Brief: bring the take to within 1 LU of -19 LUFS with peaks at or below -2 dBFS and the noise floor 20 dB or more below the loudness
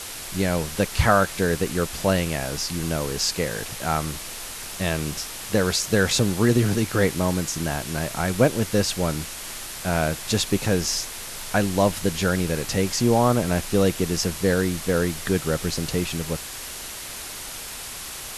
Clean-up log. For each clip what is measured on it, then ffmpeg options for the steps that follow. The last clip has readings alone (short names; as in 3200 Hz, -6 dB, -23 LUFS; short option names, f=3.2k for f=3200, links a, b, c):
noise floor -36 dBFS; noise floor target -44 dBFS; loudness -24.0 LUFS; peak -3.5 dBFS; loudness target -19.0 LUFS
-> -af "afftdn=nr=8:nf=-36"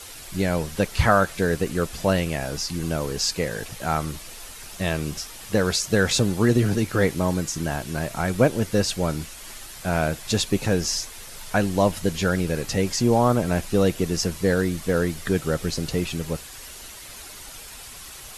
noise floor -41 dBFS; noise floor target -44 dBFS
-> -af "afftdn=nr=6:nf=-41"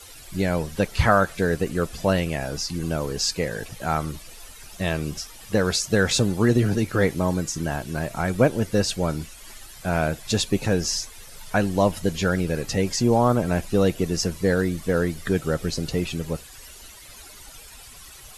noise floor -44 dBFS; loudness -24.0 LUFS; peak -4.0 dBFS; loudness target -19.0 LUFS
-> -af "volume=5dB,alimiter=limit=-2dB:level=0:latency=1"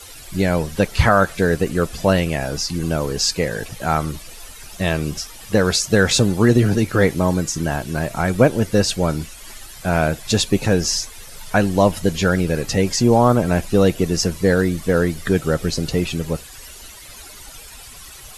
loudness -19.0 LUFS; peak -2.0 dBFS; noise floor -39 dBFS